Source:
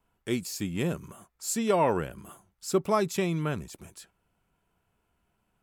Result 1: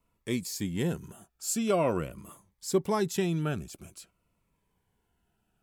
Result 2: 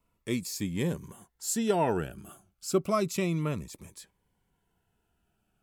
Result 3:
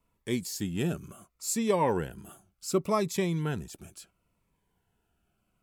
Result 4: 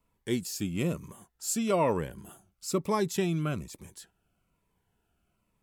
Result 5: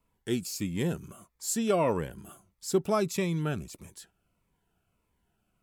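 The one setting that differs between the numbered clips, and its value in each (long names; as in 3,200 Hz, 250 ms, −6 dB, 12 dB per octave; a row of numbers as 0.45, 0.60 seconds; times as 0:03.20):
phaser whose notches keep moving one way, speed: 0.47, 0.3, 0.7, 1.1, 1.6 Hertz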